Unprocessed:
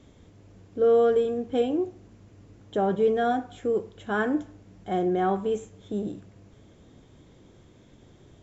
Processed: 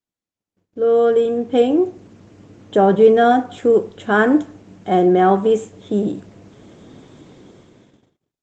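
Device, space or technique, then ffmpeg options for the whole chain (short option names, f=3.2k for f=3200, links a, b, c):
video call: -af "highpass=140,dynaudnorm=f=250:g=9:m=15dB,agate=range=-40dB:threshold=-49dB:ratio=16:detection=peak" -ar 48000 -c:a libopus -b:a 24k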